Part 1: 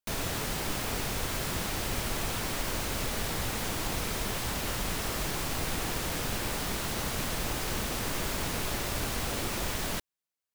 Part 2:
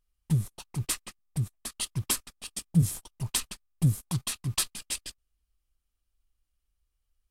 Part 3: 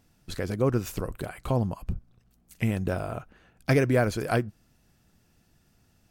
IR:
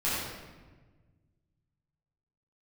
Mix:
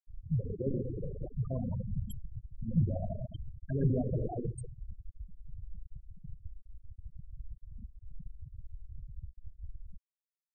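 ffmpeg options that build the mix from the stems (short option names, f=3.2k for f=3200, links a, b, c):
-filter_complex "[0:a]volume=-5.5dB,asplit=2[a][b];[b]volume=-24dB[c];[1:a]volume=-6.5dB[d];[2:a]lowshelf=f=400:g=-10.5,alimiter=level_in=0.5dB:limit=-24dB:level=0:latency=1:release=114,volume=-0.5dB,aemphasis=mode=reproduction:type=75kf,volume=-2dB,asplit=2[e][f];[f]volume=-8dB[g];[3:a]atrim=start_sample=2205[h];[c][g]amix=inputs=2:normalize=0[i];[i][h]afir=irnorm=-1:irlink=0[j];[a][d][e][j]amix=inputs=4:normalize=0,acrossover=split=350|3000[k][l][m];[l]acompressor=threshold=-32dB:ratio=10[n];[k][n][m]amix=inputs=3:normalize=0,afftfilt=real='re*gte(hypot(re,im),0.0891)':imag='im*gte(hypot(re,im),0.0891)':win_size=1024:overlap=0.75"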